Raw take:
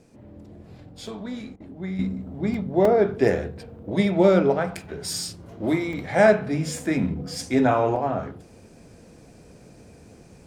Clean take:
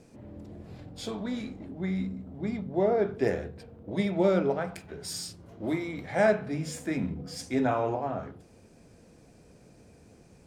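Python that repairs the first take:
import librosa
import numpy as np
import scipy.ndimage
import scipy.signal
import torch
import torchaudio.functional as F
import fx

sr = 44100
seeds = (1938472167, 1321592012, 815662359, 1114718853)

y = fx.fix_interpolate(x, sr, at_s=(1.07, 2.54, 2.85, 5.93, 7.96), length_ms=2.9)
y = fx.fix_interpolate(y, sr, at_s=(1.56,), length_ms=41.0)
y = fx.fix_level(y, sr, at_s=1.99, step_db=-7.0)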